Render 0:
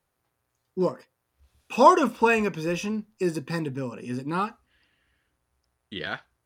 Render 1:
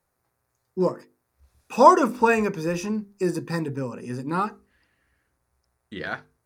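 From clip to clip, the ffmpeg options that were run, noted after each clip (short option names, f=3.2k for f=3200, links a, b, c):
-af "equalizer=f=3.1k:w=2.5:g=-11,bandreject=f=50:t=h:w=6,bandreject=f=100:t=h:w=6,bandreject=f=150:t=h:w=6,bandreject=f=200:t=h:w=6,bandreject=f=250:t=h:w=6,bandreject=f=300:t=h:w=6,bandreject=f=350:t=h:w=6,bandreject=f=400:t=h:w=6,bandreject=f=450:t=h:w=6,volume=2.5dB"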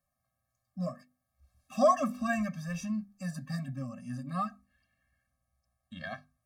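-af "afftfilt=real='re*eq(mod(floor(b*sr/1024/260),2),0)':imag='im*eq(mod(floor(b*sr/1024/260),2),0)':win_size=1024:overlap=0.75,volume=-5.5dB"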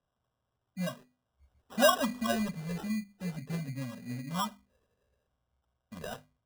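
-af "acrusher=samples=20:mix=1:aa=0.000001"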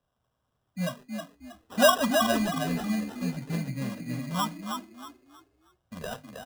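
-filter_complex "[0:a]asplit=5[a][b][c][d][e];[b]adelay=317,afreqshift=37,volume=-5.5dB[f];[c]adelay=634,afreqshift=74,volume=-15.7dB[g];[d]adelay=951,afreqshift=111,volume=-25.8dB[h];[e]adelay=1268,afreqshift=148,volume=-36dB[i];[a][f][g][h][i]amix=inputs=5:normalize=0,volume=4dB"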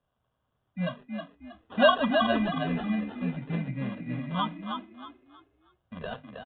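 -af "aresample=8000,aresample=44100"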